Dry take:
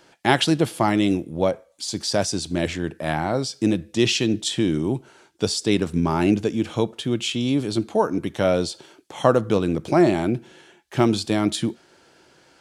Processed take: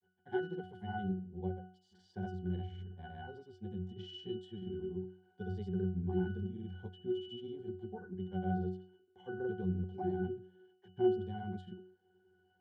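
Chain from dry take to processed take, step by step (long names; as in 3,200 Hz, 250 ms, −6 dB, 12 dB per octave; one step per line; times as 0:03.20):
granular cloud, pitch spread up and down by 0 semitones
resonances in every octave F#, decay 0.45 s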